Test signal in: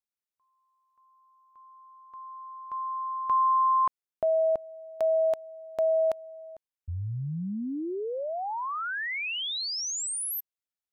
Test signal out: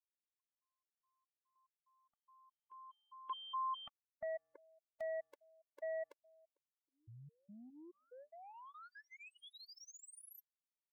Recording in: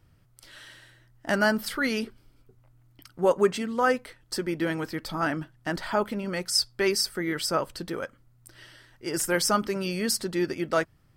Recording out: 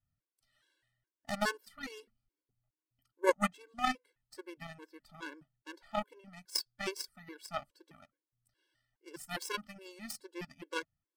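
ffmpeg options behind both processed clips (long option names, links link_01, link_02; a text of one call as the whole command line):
ffmpeg -i in.wav -af "aeval=exprs='0.335*(cos(1*acos(clip(val(0)/0.335,-1,1)))-cos(1*PI/2))+0.106*(cos(3*acos(clip(val(0)/0.335,-1,1)))-cos(3*PI/2))':channel_layout=same,afftfilt=real='re*gt(sin(2*PI*2.4*pts/sr)*(1-2*mod(floor(b*sr/1024/290),2)),0)':imag='im*gt(sin(2*PI*2.4*pts/sr)*(1-2*mod(floor(b*sr/1024/290),2)),0)':win_size=1024:overlap=0.75,volume=1.5dB" out.wav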